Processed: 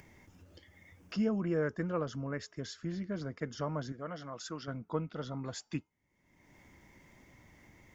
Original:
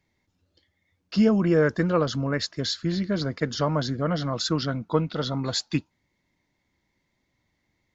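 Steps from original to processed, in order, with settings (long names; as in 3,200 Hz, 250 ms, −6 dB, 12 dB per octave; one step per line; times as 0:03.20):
parametric band 4,100 Hz −14 dB 0.44 octaves
tuned comb filter 420 Hz, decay 0.35 s, harmonics odd, mix 30%
upward compression, threshold −29 dBFS
0:03.92–0:04.68: low-shelf EQ 300 Hz −11 dB
level −8.5 dB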